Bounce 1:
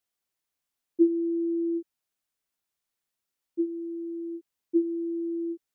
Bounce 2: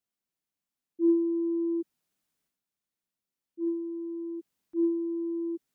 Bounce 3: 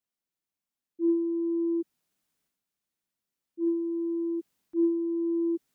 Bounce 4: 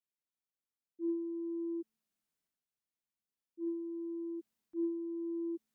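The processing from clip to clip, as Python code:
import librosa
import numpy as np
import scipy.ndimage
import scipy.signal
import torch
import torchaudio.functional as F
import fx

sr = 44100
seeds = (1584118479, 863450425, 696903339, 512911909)

y1 = fx.peak_eq(x, sr, hz=200.0, db=10.0, octaves=1.5)
y1 = fx.transient(y1, sr, attack_db=-12, sustain_db=9)
y1 = y1 * 10.0 ** (-6.0 / 20.0)
y2 = fx.rider(y1, sr, range_db=4, speed_s=0.5)
y2 = y2 * 10.0 ** (2.0 / 20.0)
y3 = fx.comb_fb(y2, sr, f0_hz=220.0, decay_s=1.3, harmonics='all', damping=0.0, mix_pct=70)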